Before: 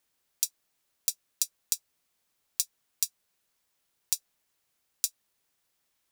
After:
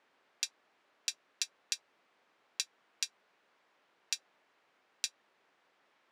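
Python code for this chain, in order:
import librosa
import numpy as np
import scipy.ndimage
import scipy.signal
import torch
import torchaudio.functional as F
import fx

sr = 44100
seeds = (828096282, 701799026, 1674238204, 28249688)

y = fx.bandpass_edges(x, sr, low_hz=310.0, high_hz=2000.0)
y = y * 10.0 ** (14.5 / 20.0)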